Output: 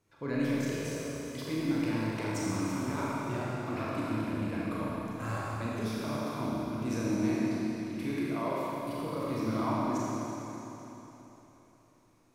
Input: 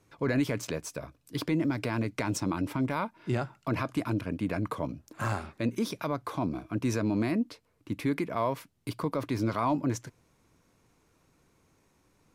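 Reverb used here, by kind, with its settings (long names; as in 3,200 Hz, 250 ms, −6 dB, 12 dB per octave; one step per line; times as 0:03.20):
four-comb reverb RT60 3.6 s, combs from 28 ms, DRR −7 dB
level −9.5 dB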